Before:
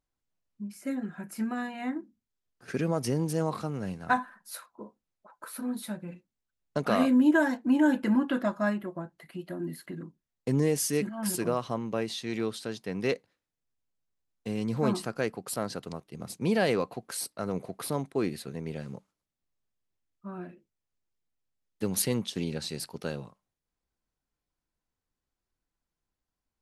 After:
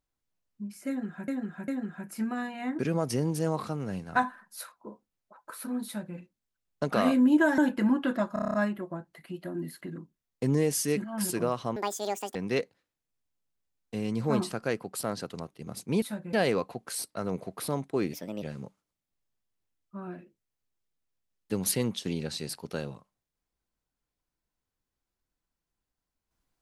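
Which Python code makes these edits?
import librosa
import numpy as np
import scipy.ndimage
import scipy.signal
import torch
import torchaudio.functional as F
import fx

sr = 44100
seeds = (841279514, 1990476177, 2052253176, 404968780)

y = fx.edit(x, sr, fx.repeat(start_s=0.88, length_s=0.4, count=3),
    fx.cut(start_s=1.99, length_s=0.74),
    fx.duplicate(start_s=5.8, length_s=0.31, to_s=16.55),
    fx.cut(start_s=7.52, length_s=0.32),
    fx.stutter(start_s=8.59, slice_s=0.03, count=8),
    fx.speed_span(start_s=11.81, length_s=1.07, speed=1.81),
    fx.speed_span(start_s=18.35, length_s=0.38, speed=1.3), tone=tone)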